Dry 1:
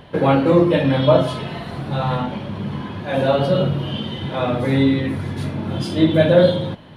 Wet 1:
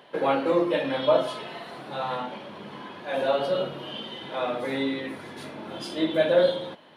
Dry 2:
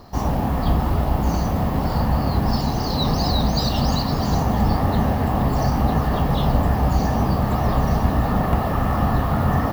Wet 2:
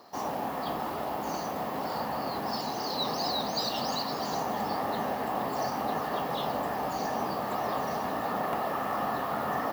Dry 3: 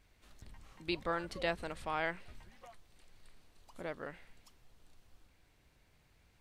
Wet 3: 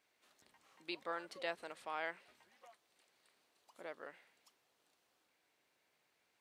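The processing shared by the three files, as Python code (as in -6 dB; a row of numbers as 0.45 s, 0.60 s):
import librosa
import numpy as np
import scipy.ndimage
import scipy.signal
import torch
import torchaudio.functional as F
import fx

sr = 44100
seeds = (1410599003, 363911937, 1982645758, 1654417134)

y = scipy.signal.sosfilt(scipy.signal.butter(2, 380.0, 'highpass', fs=sr, output='sos'), x)
y = y * 10.0 ** (-5.5 / 20.0)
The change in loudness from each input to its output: -8.0 LU, -10.5 LU, -6.5 LU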